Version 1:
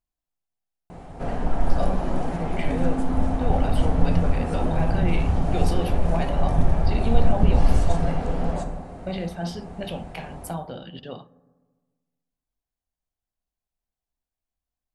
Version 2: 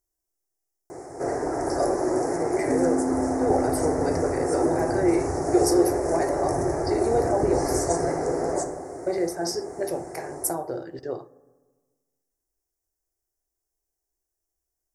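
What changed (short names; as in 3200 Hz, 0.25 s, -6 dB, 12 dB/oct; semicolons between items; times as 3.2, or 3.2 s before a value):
first sound: add HPF 140 Hz 12 dB/oct; second sound: remove fixed phaser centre 450 Hz, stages 4; master: add EQ curve 130 Hz 0 dB, 200 Hz -17 dB, 350 Hz +14 dB, 510 Hz +5 dB, 1100 Hz 0 dB, 2000 Hz +3 dB, 3100 Hz -28 dB, 5400 Hz +14 dB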